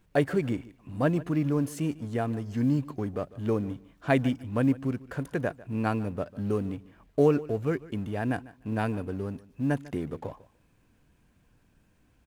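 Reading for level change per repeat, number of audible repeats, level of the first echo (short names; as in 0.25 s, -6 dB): -15.5 dB, 2, -19.5 dB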